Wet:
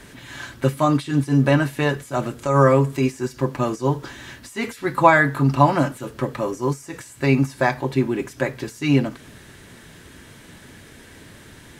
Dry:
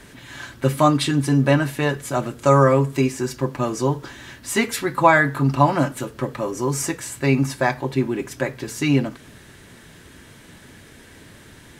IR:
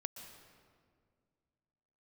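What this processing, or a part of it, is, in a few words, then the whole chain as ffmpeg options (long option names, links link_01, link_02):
de-esser from a sidechain: -filter_complex "[0:a]asplit=2[link_01][link_02];[link_02]highpass=frequency=5500:width=0.5412,highpass=frequency=5500:width=1.3066,apad=whole_len=519990[link_03];[link_01][link_03]sidechaincompress=threshold=-41dB:ratio=16:attack=4.9:release=86,volume=1dB"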